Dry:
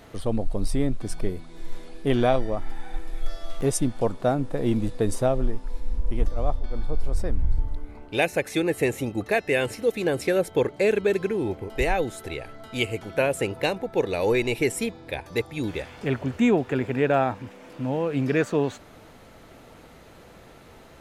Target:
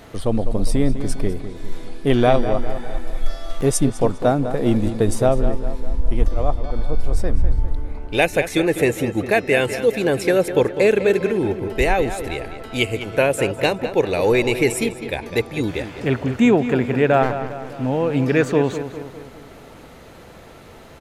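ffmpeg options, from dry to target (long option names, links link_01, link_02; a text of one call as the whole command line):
ffmpeg -i in.wav -filter_complex "[0:a]asplit=3[link_01][link_02][link_03];[link_01]afade=type=out:start_time=17.22:duration=0.02[link_04];[link_02]aeval=exprs='max(val(0),0)':channel_layout=same,afade=type=in:start_time=17.22:duration=0.02,afade=type=out:start_time=17.65:duration=0.02[link_05];[link_03]afade=type=in:start_time=17.65:duration=0.02[link_06];[link_04][link_05][link_06]amix=inputs=3:normalize=0,asplit=2[link_07][link_08];[link_08]adelay=202,lowpass=frequency=3700:poles=1,volume=-10.5dB,asplit=2[link_09][link_10];[link_10]adelay=202,lowpass=frequency=3700:poles=1,volume=0.53,asplit=2[link_11][link_12];[link_12]adelay=202,lowpass=frequency=3700:poles=1,volume=0.53,asplit=2[link_13][link_14];[link_14]adelay=202,lowpass=frequency=3700:poles=1,volume=0.53,asplit=2[link_15][link_16];[link_16]adelay=202,lowpass=frequency=3700:poles=1,volume=0.53,asplit=2[link_17][link_18];[link_18]adelay=202,lowpass=frequency=3700:poles=1,volume=0.53[link_19];[link_07][link_09][link_11][link_13][link_15][link_17][link_19]amix=inputs=7:normalize=0,volume=5.5dB" out.wav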